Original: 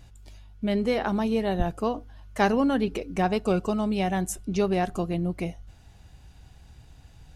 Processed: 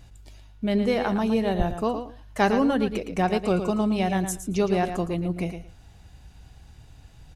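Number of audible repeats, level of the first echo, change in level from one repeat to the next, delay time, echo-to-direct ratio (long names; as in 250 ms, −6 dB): 2, −9.0 dB, −16.0 dB, 113 ms, −9.0 dB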